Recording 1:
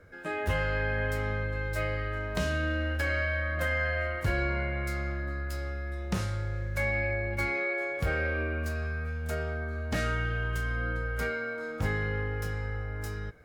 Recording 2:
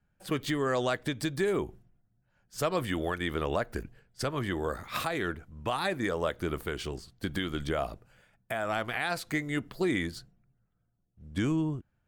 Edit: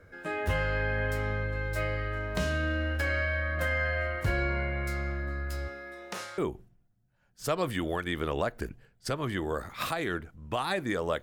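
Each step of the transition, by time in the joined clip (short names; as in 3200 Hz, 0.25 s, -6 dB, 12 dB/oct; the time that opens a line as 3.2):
recording 1
5.67–6.38 HPF 220 Hz -> 730 Hz
6.38 switch to recording 2 from 1.52 s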